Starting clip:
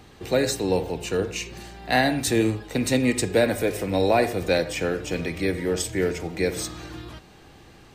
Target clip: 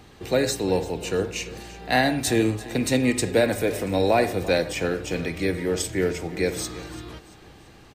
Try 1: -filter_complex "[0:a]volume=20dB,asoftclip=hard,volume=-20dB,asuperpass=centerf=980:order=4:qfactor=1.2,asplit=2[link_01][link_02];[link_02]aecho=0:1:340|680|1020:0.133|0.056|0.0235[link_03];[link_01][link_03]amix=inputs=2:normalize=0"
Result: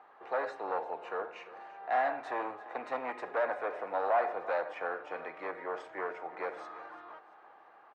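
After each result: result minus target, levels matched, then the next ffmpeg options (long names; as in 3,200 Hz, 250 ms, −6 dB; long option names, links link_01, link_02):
gain into a clipping stage and back: distortion +40 dB; 1,000 Hz band +8.5 dB
-filter_complex "[0:a]volume=8.5dB,asoftclip=hard,volume=-8.5dB,asuperpass=centerf=980:order=4:qfactor=1.2,asplit=2[link_01][link_02];[link_02]aecho=0:1:340|680|1020:0.133|0.056|0.0235[link_03];[link_01][link_03]amix=inputs=2:normalize=0"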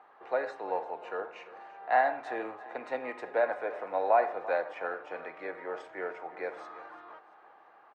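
1,000 Hz band +8.0 dB
-filter_complex "[0:a]volume=8.5dB,asoftclip=hard,volume=-8.5dB,asplit=2[link_01][link_02];[link_02]aecho=0:1:340|680|1020:0.133|0.056|0.0235[link_03];[link_01][link_03]amix=inputs=2:normalize=0"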